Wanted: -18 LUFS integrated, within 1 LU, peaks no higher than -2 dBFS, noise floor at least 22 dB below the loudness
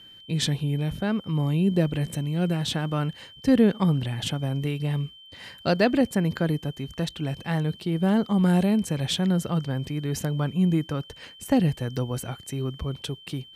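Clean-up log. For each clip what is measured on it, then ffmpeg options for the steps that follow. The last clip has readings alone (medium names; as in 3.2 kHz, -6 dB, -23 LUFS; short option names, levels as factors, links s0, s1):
steady tone 3.1 kHz; tone level -46 dBFS; loudness -25.5 LUFS; peak level -8.5 dBFS; loudness target -18.0 LUFS
-> -af "bandreject=f=3100:w=30"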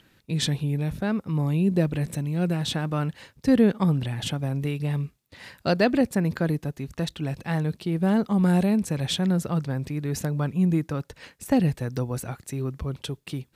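steady tone not found; loudness -26.0 LUFS; peak level -8.5 dBFS; loudness target -18.0 LUFS
-> -af "volume=2.51,alimiter=limit=0.794:level=0:latency=1"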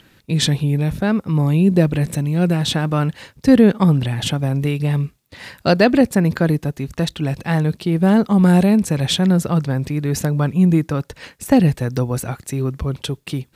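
loudness -18.0 LUFS; peak level -2.0 dBFS; noise floor -57 dBFS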